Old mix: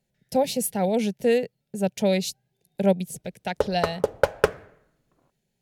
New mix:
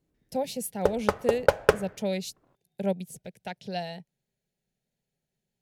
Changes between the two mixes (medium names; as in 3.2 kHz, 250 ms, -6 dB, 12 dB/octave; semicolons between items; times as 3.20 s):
speech -7.5 dB; background: entry -2.75 s